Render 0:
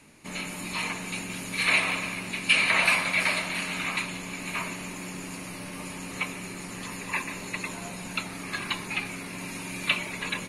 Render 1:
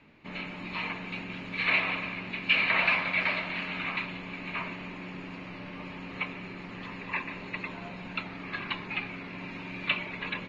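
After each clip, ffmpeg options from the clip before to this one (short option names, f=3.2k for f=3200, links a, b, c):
-af "lowpass=f=3.5k:w=0.5412,lowpass=f=3.5k:w=1.3066,volume=-2.5dB"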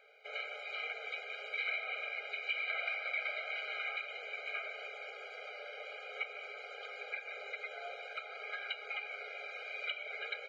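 -af "acompressor=threshold=-35dB:ratio=5,afftfilt=real='re*eq(mod(floor(b*sr/1024/410),2),1)':imag='im*eq(mod(floor(b*sr/1024/410),2),1)':win_size=1024:overlap=0.75,volume=1.5dB"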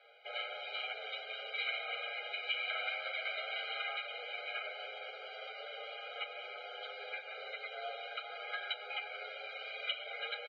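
-filter_complex "[0:a]highpass=f=320:w=0.5412,highpass=f=320:w=1.3066,equalizer=f=410:t=q:w=4:g=-9,equalizer=f=610:t=q:w=4:g=-4,equalizer=f=1.1k:t=q:w=4:g=-9,equalizer=f=1.6k:t=q:w=4:g=-4,equalizer=f=2.3k:t=q:w=4:g=-9,equalizer=f=3.3k:t=q:w=4:g=3,lowpass=f=4k:w=0.5412,lowpass=f=4k:w=1.3066,asplit=2[a][b];[b]adelay=8.2,afreqshift=0.48[c];[a][c]amix=inputs=2:normalize=1,volume=9.5dB"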